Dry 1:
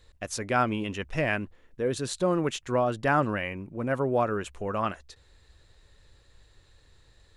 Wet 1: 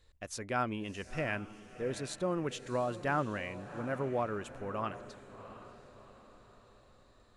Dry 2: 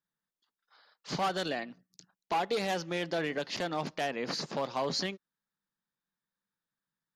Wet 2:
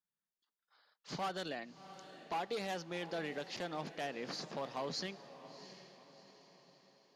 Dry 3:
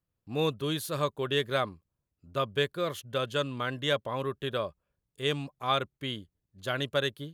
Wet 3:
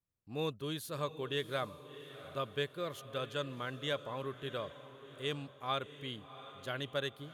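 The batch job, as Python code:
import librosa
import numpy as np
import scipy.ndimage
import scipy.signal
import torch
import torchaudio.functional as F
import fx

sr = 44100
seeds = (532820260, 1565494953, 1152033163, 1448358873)

y = fx.echo_diffused(x, sr, ms=708, feedback_pct=46, wet_db=-13.5)
y = y * 10.0 ** (-8.0 / 20.0)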